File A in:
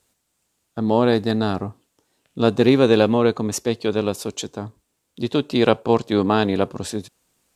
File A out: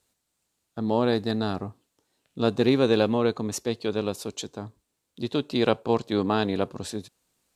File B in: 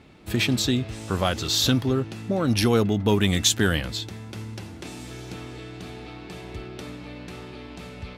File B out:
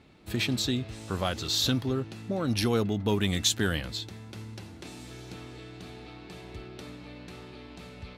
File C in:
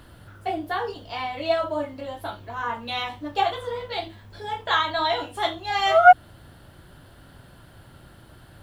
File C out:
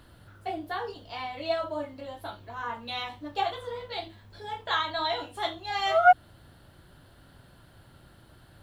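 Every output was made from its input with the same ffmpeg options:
-af "equalizer=f=4.1k:t=o:w=0.27:g=3.5,volume=-6dB"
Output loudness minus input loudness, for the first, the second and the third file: -6.0, -5.5, -6.0 LU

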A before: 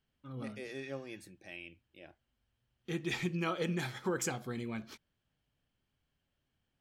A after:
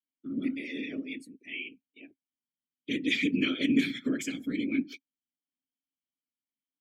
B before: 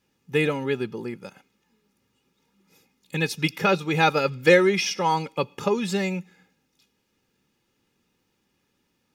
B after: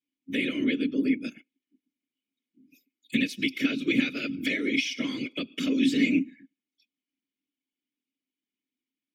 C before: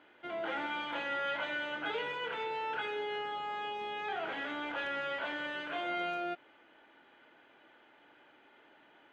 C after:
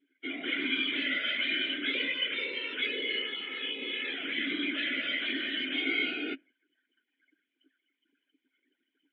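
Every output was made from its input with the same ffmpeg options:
-filter_complex "[0:a]aemphasis=mode=production:type=75fm,afftdn=nr=29:nf=-49,acompressor=threshold=-28dB:ratio=20,afreqshift=47,apsyclip=24.5dB,afftfilt=real='hypot(re,im)*cos(2*PI*random(0))':imag='hypot(re,im)*sin(2*PI*random(1))':win_size=512:overlap=0.75,asplit=3[a][b][c];[a]bandpass=f=270:t=q:w=8,volume=0dB[d];[b]bandpass=f=2.29k:t=q:w=8,volume=-6dB[e];[c]bandpass=f=3.01k:t=q:w=8,volume=-9dB[f];[d][e][f]amix=inputs=3:normalize=0"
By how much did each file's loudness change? +7.5, -4.0, +6.0 LU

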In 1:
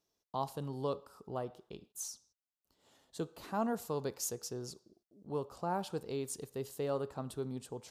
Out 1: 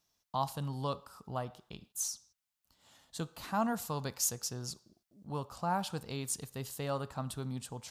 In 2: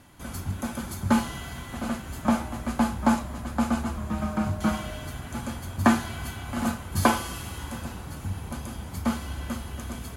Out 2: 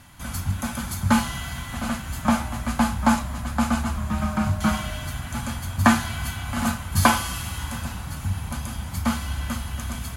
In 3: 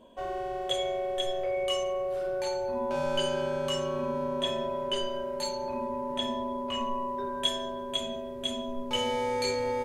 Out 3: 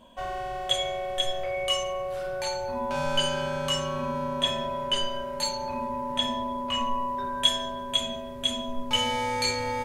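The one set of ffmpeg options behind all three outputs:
-af "equalizer=f=400:t=o:w=1.1:g=-13.5,volume=6.5dB"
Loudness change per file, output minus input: +2.5, +3.5, +3.0 LU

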